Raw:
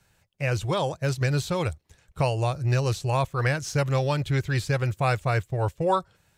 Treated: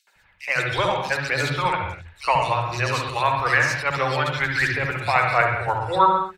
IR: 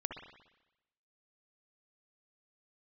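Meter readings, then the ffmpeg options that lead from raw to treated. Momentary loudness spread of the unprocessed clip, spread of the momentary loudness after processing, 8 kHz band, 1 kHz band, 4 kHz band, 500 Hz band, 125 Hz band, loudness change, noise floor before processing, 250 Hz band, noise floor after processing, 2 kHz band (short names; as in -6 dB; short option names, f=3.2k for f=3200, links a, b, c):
4 LU, 5 LU, +1.0 dB, +9.5 dB, +6.5 dB, +1.5 dB, -5.0 dB, +4.5 dB, -66 dBFS, -2.5 dB, -58 dBFS, +11.5 dB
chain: -filter_complex "[0:a]equalizer=f=125:t=o:w=1:g=-9,equalizer=f=1k:t=o:w=1:g=7,equalizer=f=2k:t=o:w=1:g=11,equalizer=f=4k:t=o:w=1:g=7,tremolo=f=9.4:d=0.51,aphaser=in_gain=1:out_gain=1:delay=1.4:decay=0.39:speed=1.5:type=triangular,acrossover=split=290|3300[a][b][c];[b]adelay=70[d];[a]adelay=150[e];[e][d][c]amix=inputs=3:normalize=0[f];[1:a]atrim=start_sample=2205,afade=t=out:st=0.32:d=0.01,atrim=end_sample=14553[g];[f][g]afir=irnorm=-1:irlink=0,volume=2.5dB"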